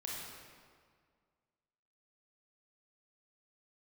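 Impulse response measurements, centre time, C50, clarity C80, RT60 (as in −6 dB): 113 ms, −1.5 dB, 0.5 dB, 1.9 s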